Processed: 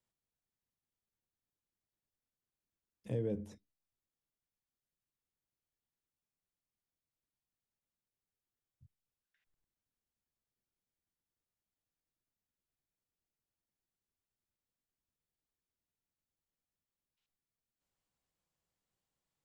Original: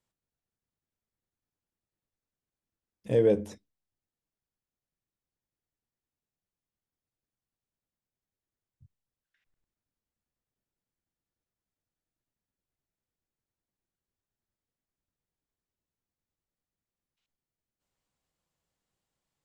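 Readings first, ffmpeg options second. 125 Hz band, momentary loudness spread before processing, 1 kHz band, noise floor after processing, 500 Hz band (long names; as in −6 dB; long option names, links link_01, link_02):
−5.5 dB, 12 LU, −14.5 dB, below −85 dBFS, −15.5 dB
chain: -filter_complex "[0:a]acrossover=split=240[link_01][link_02];[link_02]acompressor=threshold=-44dB:ratio=2[link_03];[link_01][link_03]amix=inputs=2:normalize=0,volume=-5dB"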